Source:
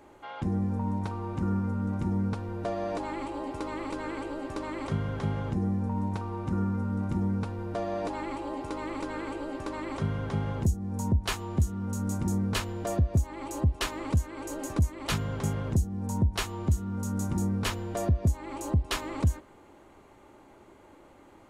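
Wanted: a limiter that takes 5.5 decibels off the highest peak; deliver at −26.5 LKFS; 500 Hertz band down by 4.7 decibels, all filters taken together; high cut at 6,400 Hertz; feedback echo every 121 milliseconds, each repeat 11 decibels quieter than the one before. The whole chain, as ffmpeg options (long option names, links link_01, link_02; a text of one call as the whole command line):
ffmpeg -i in.wav -af "lowpass=6400,equalizer=frequency=500:width_type=o:gain=-6.5,alimiter=limit=-22dB:level=0:latency=1,aecho=1:1:121|242|363:0.282|0.0789|0.0221,volume=7dB" out.wav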